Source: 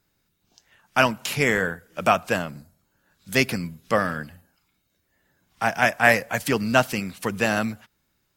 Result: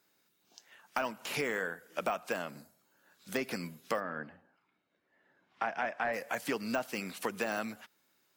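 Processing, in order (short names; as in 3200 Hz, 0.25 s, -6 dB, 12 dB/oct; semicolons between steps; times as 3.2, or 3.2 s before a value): HPF 290 Hz 12 dB/oct; de-esser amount 70%; 3.99–6.12 LPF 1400 Hz -> 3600 Hz 12 dB/oct; compressor 4:1, threshold -32 dBFS, peak gain reduction 13.5 dB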